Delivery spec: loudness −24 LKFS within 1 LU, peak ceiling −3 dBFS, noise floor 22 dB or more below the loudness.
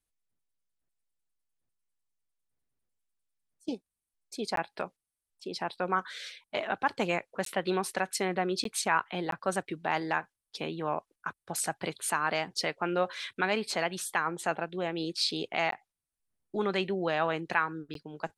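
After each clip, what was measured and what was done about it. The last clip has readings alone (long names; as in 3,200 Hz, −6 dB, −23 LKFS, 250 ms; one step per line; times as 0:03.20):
number of dropouts 6; longest dropout 13 ms; integrated loudness −32.0 LKFS; sample peak −12.0 dBFS; target loudness −24.0 LKFS
→ repair the gap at 0:04.56/0:07.45/0:08.64/0:09.31/0:15.71/0:17.94, 13 ms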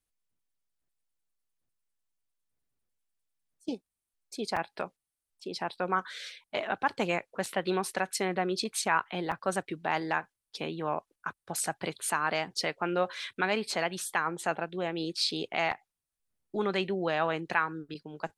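number of dropouts 0; integrated loudness −32.0 LKFS; sample peak −12.0 dBFS; target loudness −24.0 LKFS
→ level +8 dB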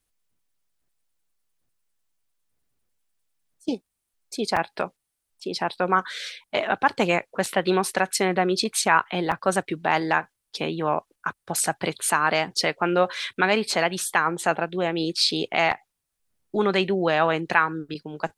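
integrated loudness −24.0 LKFS; sample peak −4.0 dBFS; background noise floor −80 dBFS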